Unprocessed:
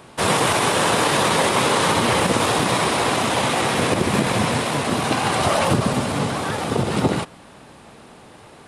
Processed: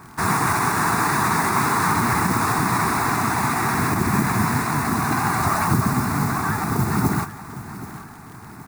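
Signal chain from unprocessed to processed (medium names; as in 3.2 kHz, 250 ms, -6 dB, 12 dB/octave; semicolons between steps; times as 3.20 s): treble shelf 5.8 kHz -8 dB; in parallel at 0 dB: peak limiter -17.5 dBFS, peak gain reduction 10.5 dB; on the sum: modulation noise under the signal 16 dB; static phaser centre 1.3 kHz, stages 4; crackle 73 per s -34 dBFS; on a send: feedback delay 775 ms, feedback 42%, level -15 dB; on the sum: trim -1 dB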